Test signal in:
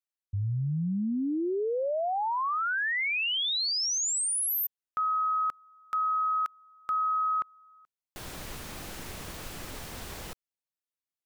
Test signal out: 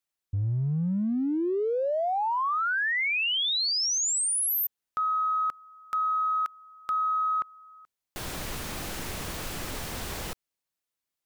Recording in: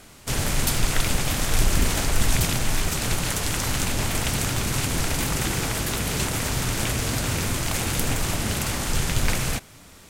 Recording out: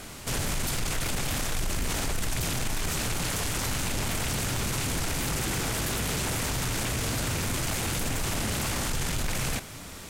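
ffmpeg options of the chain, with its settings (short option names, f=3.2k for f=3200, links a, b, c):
-af "acompressor=threshold=-30dB:ratio=10:attack=0.2:release=21:knee=6:detection=peak,volume=6dB"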